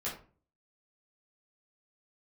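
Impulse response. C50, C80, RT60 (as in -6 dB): 7.0 dB, 12.0 dB, 0.40 s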